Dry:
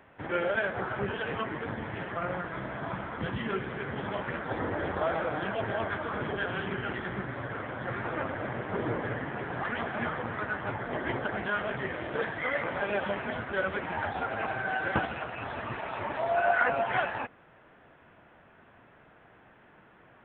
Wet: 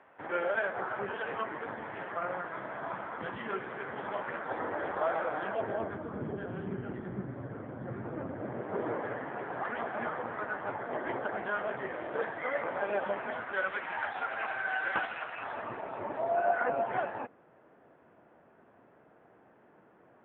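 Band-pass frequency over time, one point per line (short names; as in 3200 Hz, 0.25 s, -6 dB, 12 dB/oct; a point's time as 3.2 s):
band-pass, Q 0.71
5.42 s 910 Hz
6.07 s 210 Hz
8.28 s 210 Hz
8.91 s 710 Hz
13.11 s 710 Hz
13.79 s 1700 Hz
15.32 s 1700 Hz
15.85 s 420 Hz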